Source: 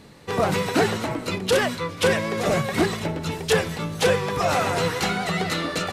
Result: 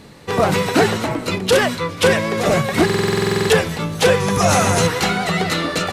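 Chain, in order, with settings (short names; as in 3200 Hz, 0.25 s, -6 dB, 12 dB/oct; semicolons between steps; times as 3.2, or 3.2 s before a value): 4.2–4.87 thirty-one-band EQ 100 Hz +8 dB, 200 Hz +9 dB, 6300 Hz +11 dB, 10000 Hz +12 dB; stuck buffer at 2.85, samples 2048, times 13; gain +5.5 dB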